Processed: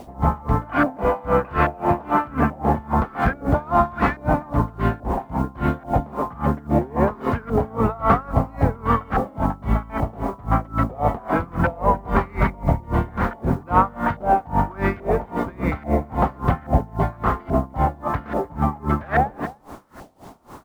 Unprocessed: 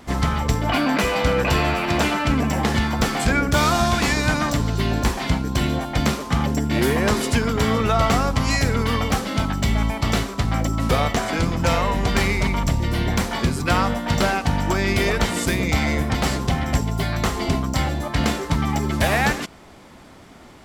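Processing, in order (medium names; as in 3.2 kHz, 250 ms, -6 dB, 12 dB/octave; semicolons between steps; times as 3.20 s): self-modulated delay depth 0.071 ms; in parallel at -0.5 dB: peak limiter -16.5 dBFS, peak gain reduction 8.5 dB; on the sum: LFO low-pass saw up 1.2 Hz 680–1500 Hz; word length cut 8-bit, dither none; on a send: delay 299 ms -17 dB; on the sum: logarithmic tremolo 3.7 Hz, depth 25 dB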